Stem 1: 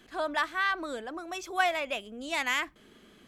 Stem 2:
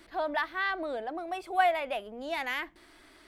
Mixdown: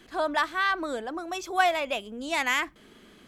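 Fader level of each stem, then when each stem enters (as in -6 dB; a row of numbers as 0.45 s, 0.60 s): +3.0 dB, -8.5 dB; 0.00 s, 0.00 s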